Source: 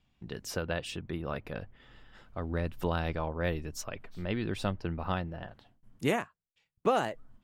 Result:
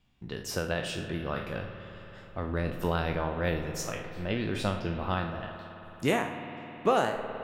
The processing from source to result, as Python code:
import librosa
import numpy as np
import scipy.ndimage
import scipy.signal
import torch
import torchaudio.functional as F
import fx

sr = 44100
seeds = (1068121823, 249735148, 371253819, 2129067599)

y = fx.spec_trails(x, sr, decay_s=0.44)
y = fx.rev_spring(y, sr, rt60_s=4.0, pass_ms=(53,), chirp_ms=40, drr_db=7.5)
y = y * 10.0 ** (1.0 / 20.0)